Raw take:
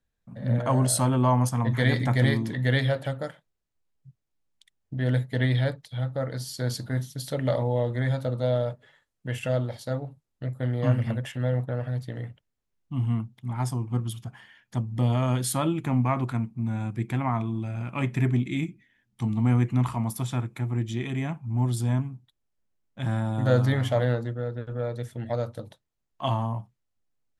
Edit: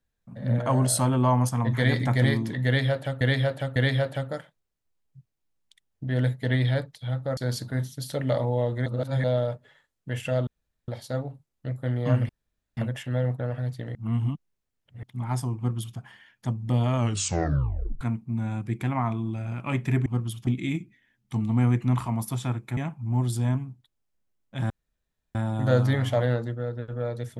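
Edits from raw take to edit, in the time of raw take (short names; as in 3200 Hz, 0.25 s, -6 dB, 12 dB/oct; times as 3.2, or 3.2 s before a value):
2.66–3.21 loop, 3 plays
6.27–6.55 cut
8.04–8.42 reverse
9.65 insert room tone 0.41 s
11.06 insert room tone 0.48 s
12.24–13.32 reverse
13.86–14.27 copy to 18.35
15.26 tape stop 1.04 s
20.65–21.21 cut
23.14 insert room tone 0.65 s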